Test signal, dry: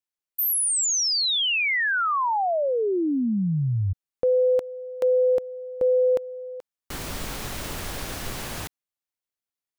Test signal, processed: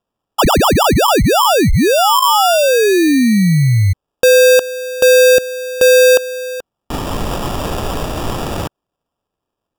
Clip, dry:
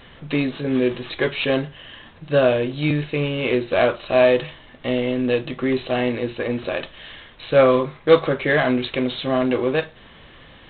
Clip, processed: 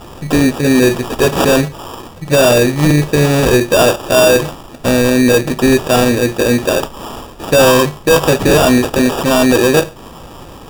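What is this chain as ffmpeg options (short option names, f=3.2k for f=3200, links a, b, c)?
-af "apsyclip=16.5dB,acrusher=samples=21:mix=1:aa=0.000001,bandreject=f=1.5k:w=9.8,volume=-4dB"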